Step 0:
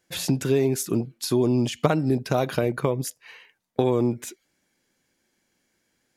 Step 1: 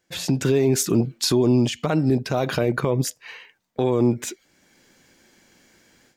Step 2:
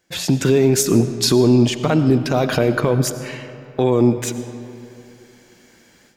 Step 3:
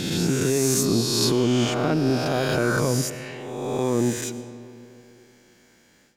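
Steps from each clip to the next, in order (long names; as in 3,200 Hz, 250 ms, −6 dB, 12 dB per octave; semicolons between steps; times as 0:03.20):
parametric band 11,000 Hz −11 dB 0.35 octaves; automatic gain control gain up to 15.5 dB; brickwall limiter −10.5 dBFS, peak gain reduction 9.5 dB
convolution reverb RT60 2.8 s, pre-delay 50 ms, DRR 11 dB; level +4.5 dB
peak hold with a rise ahead of every peak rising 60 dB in 1.83 s; level −9 dB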